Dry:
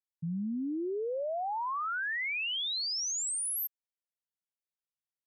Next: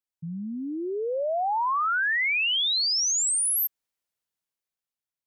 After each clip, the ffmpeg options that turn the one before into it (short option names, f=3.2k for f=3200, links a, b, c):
-af "dynaudnorm=f=200:g=11:m=9dB"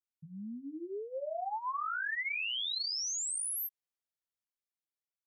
-af "flanger=delay=17:depth=3.5:speed=1.7,volume=-8dB"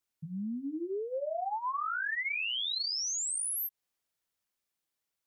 -af "acompressor=threshold=-43dB:ratio=2.5,volume=8.5dB"